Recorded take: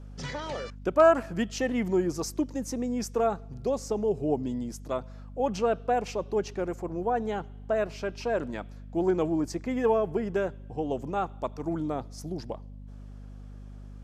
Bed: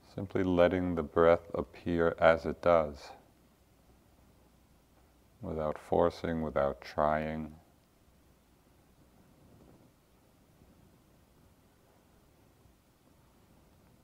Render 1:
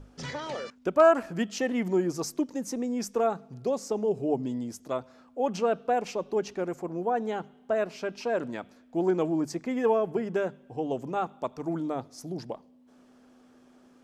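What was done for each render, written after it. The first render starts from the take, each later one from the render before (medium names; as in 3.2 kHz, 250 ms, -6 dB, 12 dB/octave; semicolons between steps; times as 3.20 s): hum notches 50/100/150/200 Hz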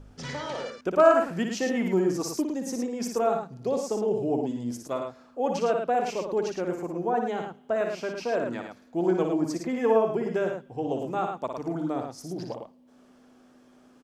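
loudspeakers at several distances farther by 20 m -6 dB, 37 m -6 dB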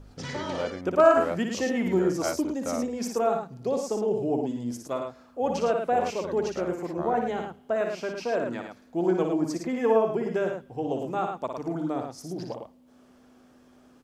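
add bed -7 dB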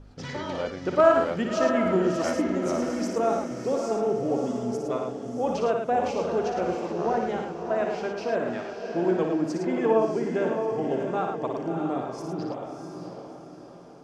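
distance through air 54 m; on a send: echo that smears into a reverb 655 ms, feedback 44%, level -5.5 dB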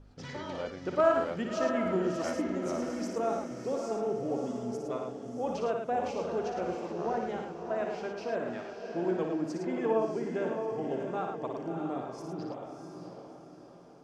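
trim -6.5 dB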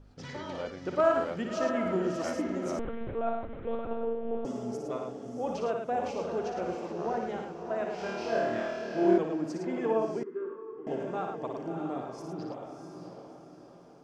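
2.79–4.45 s: monotone LPC vocoder at 8 kHz 230 Hz; 7.96–9.18 s: flutter echo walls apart 4.5 m, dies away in 1.1 s; 10.23–10.87 s: two resonant band-passes 680 Hz, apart 1.6 oct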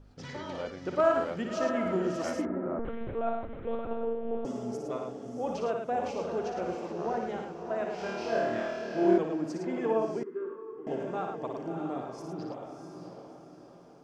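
2.45–2.85 s: low-pass 1.6 kHz 24 dB/octave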